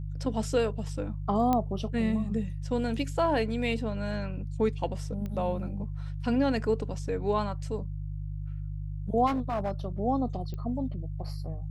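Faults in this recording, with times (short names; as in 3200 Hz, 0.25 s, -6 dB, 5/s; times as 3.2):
hum 50 Hz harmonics 3 -35 dBFS
1.53 pop -14 dBFS
5.26 pop -25 dBFS
9.26–9.71 clipped -25.5 dBFS
10.54 pop -27 dBFS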